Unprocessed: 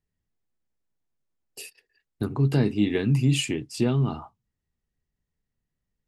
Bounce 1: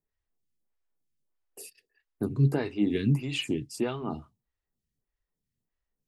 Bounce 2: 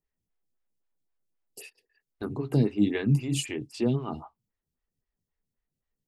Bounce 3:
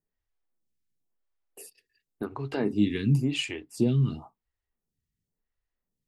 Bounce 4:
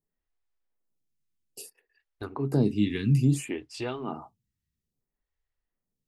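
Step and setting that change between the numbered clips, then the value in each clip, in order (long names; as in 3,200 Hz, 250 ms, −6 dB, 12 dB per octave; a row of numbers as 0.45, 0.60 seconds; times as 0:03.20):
phaser with staggered stages, speed: 1.6, 3.8, 0.94, 0.6 Hertz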